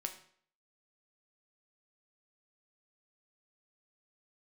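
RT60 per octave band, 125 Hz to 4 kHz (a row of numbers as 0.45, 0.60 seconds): 0.55, 0.55, 0.55, 0.55, 0.55, 0.50 seconds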